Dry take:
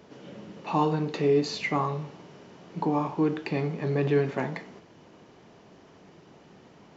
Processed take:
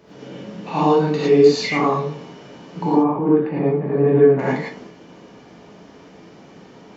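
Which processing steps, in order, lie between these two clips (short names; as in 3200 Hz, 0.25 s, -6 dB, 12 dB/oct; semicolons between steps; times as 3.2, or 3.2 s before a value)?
2.92–4.39 LPF 1200 Hz 12 dB/oct; non-linear reverb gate 0.13 s rising, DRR -8 dB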